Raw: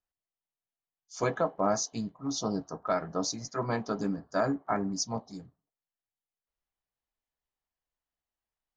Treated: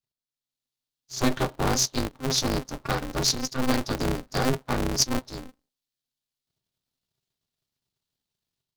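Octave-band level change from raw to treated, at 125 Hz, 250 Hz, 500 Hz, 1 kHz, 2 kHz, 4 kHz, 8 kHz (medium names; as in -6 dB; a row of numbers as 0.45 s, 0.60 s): +8.5 dB, +4.5 dB, +1.0 dB, +2.5 dB, +7.0 dB, +12.0 dB, +9.0 dB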